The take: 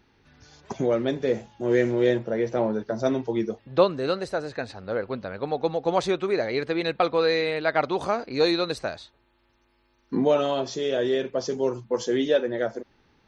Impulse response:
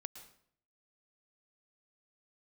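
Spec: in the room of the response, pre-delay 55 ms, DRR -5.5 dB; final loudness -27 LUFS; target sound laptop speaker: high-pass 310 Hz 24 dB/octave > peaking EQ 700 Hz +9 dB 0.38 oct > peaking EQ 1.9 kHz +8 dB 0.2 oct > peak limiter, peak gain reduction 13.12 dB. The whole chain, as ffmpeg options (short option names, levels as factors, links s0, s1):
-filter_complex "[0:a]asplit=2[s0][s1];[1:a]atrim=start_sample=2205,adelay=55[s2];[s1][s2]afir=irnorm=-1:irlink=0,volume=2.99[s3];[s0][s3]amix=inputs=2:normalize=0,highpass=f=310:w=0.5412,highpass=f=310:w=1.3066,equalizer=f=700:t=o:w=0.38:g=9,equalizer=f=1900:t=o:w=0.2:g=8,volume=0.562,alimiter=limit=0.133:level=0:latency=1"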